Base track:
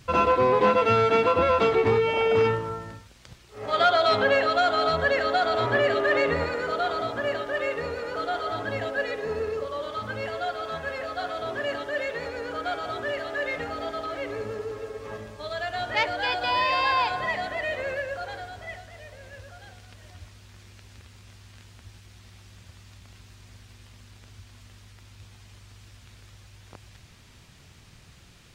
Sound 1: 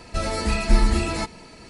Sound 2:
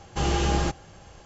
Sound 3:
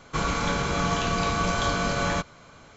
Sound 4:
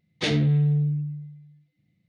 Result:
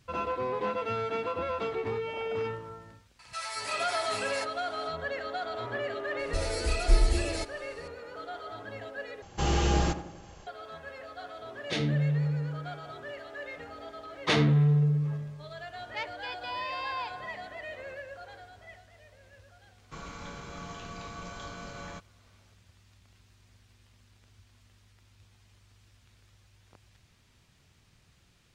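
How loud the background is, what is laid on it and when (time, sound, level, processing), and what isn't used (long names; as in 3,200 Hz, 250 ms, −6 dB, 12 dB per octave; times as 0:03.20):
base track −11.5 dB
0:03.19: mix in 1 −5.5 dB + high-pass filter 930 Hz 24 dB per octave
0:06.19: mix in 1 −4 dB + phaser with its sweep stopped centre 470 Hz, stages 4
0:09.22: overwrite with 2 −2.5 dB + tape delay 90 ms, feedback 55%, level −8 dB, low-pass 1,300 Hz
0:11.49: mix in 4 −6.5 dB
0:14.06: mix in 4 −2 dB + parametric band 1,100 Hz +14.5 dB 0.89 octaves
0:19.78: mix in 3 −17 dB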